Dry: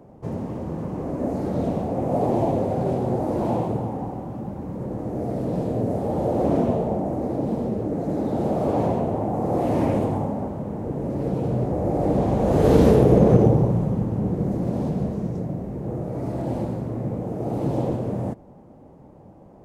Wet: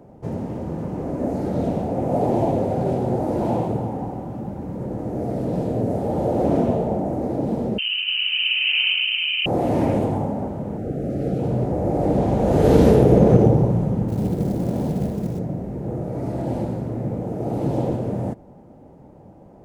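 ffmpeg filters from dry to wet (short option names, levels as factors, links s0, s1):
-filter_complex "[0:a]asettb=1/sr,asplit=3[s0][s1][s2];[s0]atrim=end=7.784[s3];[s1]atrim=start=7.78:end=9.46,asetpts=PTS-STARTPTS,afade=t=in:d=0.004:c=qsin,afade=t=out:st=1.676:d=0.004:c=qsin,lowpass=f=2700:t=q:w=0.5098,lowpass=f=2700:t=q:w=0.6013,lowpass=f=2700:t=q:w=0.9,lowpass=f=2700:t=q:w=2.563,afreqshift=-3200[s4];[s2]atrim=start=9.456[s5];[s3][s4]acrossfade=d=0.004:c1=hsin:c2=qsin[s6];[s6][s5]acrossfade=d=0.004:c1=qsin:c2=hsin,asettb=1/sr,asplit=3[s7][s8][s9];[s7]atrim=end=10.774[s10];[s8]atrim=start=10.77:end=11.4,asetpts=PTS-STARTPTS,afade=t=in:d=0.004:c=qsin,afade=t=out:st=0.626:d=0.004:c=qsin,asuperstop=centerf=980:order=20:qfactor=2.4[s11];[s9]atrim=start=11.396[s12];[s10][s11]acrossfade=d=0.004:c1=hsin:c2=qsin[s13];[s13][s12]acrossfade=d=0.004:c1=qsin:c2=hsin,asettb=1/sr,asplit=3[s14][s15][s16];[s14]atrim=end=14.084[s17];[s15]atrim=start=14.08:end=15.39,asetpts=PTS-STARTPTS,afade=t=in:d=0.004:c=qsin,afade=t=out:st=1.306:d=0.004:c=qsin,acrusher=bits=7:mode=log:mix=0:aa=0.000001[s18];[s16]atrim=start=15.386[s19];[s17][s18]acrossfade=d=0.004:c1=hsin:c2=qsin[s20];[s20][s19]acrossfade=d=0.004:c1=qsin:c2=hsin,bandreject=f=1100:w=10,volume=1.19"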